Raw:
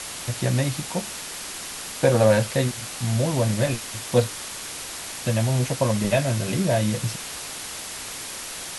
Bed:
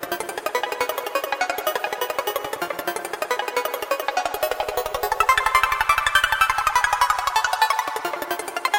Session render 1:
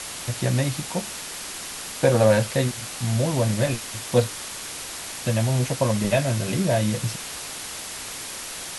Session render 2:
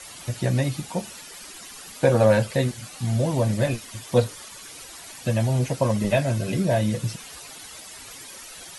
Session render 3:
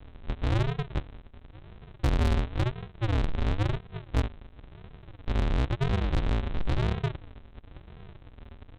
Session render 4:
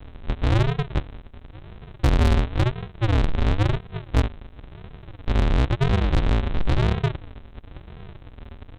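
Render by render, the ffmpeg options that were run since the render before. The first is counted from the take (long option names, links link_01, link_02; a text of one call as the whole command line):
ffmpeg -i in.wav -af anull out.wav
ffmpeg -i in.wav -af "afftdn=noise_reduction=12:noise_floor=-35" out.wav
ffmpeg -i in.wav -af "aresample=8000,acrusher=samples=39:mix=1:aa=0.000001:lfo=1:lforange=23.4:lforate=0.97,aresample=44100,asoftclip=type=tanh:threshold=-20.5dB" out.wav
ffmpeg -i in.wav -af "volume=6.5dB" out.wav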